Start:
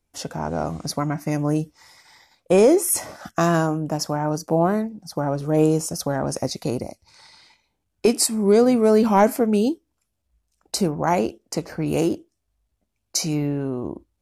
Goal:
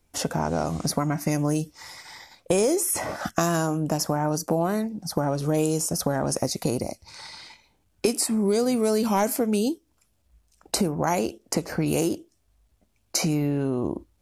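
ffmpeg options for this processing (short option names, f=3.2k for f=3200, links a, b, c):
-filter_complex "[0:a]acrossover=split=3000|6600[a][b][c];[a]acompressor=threshold=-31dB:ratio=4[d];[b]acompressor=threshold=-48dB:ratio=4[e];[c]acompressor=threshold=-36dB:ratio=4[f];[d][e][f]amix=inputs=3:normalize=0,volume=8dB"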